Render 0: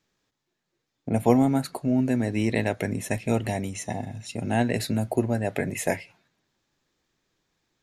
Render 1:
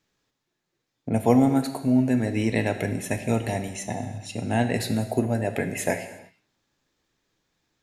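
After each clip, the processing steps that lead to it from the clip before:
reverb whose tail is shaped and stops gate 380 ms falling, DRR 7.5 dB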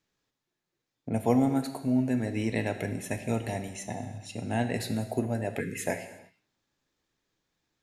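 time-frequency box erased 0:05.60–0:05.86, 520–1,100 Hz
level −5.5 dB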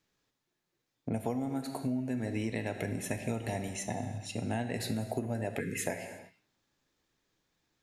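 downward compressor 12 to 1, threshold −31 dBFS, peak gain reduction 13.5 dB
level +1.5 dB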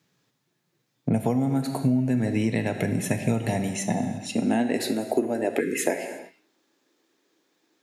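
high-pass filter sweep 140 Hz → 320 Hz, 0:03.64–0:04.94
level +7.5 dB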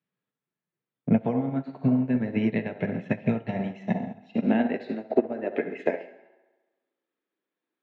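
loudspeaker in its box 130–3,200 Hz, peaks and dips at 200 Hz +4 dB, 310 Hz −4 dB, 810 Hz −4 dB
delay with a band-pass on its return 68 ms, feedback 68%, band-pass 770 Hz, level −4.5 dB
expander for the loud parts 2.5 to 1, over −33 dBFS
level +4.5 dB

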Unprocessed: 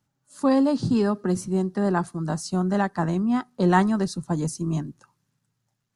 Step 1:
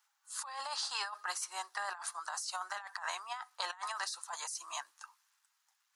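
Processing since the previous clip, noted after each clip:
Butterworth high-pass 890 Hz 36 dB per octave
compressor whose output falls as the input rises −41 dBFS, ratio −1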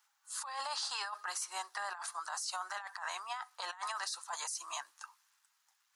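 brickwall limiter −30 dBFS, peak gain reduction 9.5 dB
level +2 dB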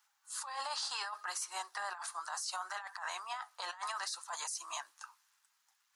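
flanger 0.68 Hz, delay 0.6 ms, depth 8.3 ms, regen −75%
level +4 dB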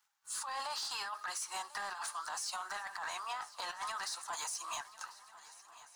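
downward compressor 3 to 1, threshold −42 dBFS, peak gain reduction 6 dB
leveller curve on the samples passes 2
feedback echo with a long and a short gap by turns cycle 1,391 ms, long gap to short 3 to 1, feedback 45%, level −18 dB
level −1.5 dB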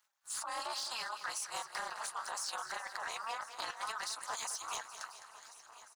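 reverb reduction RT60 0.53 s
repeating echo 208 ms, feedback 59%, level −12 dB
amplitude modulation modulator 230 Hz, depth 95%
level +4.5 dB

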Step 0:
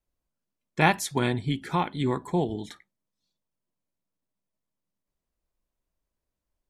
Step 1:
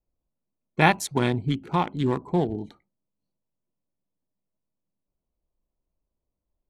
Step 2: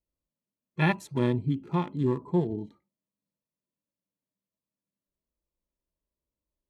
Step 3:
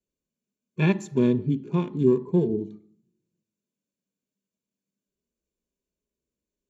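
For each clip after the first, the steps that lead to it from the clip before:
adaptive Wiener filter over 25 samples; level +2.5 dB
harmonic and percussive parts rebalanced percussive −15 dB; notch comb filter 750 Hz
hollow resonant body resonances 220/400/1,500 Hz, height 9 dB, ringing for 35 ms; convolution reverb RT60 0.60 s, pre-delay 3 ms, DRR 16 dB; level −7 dB

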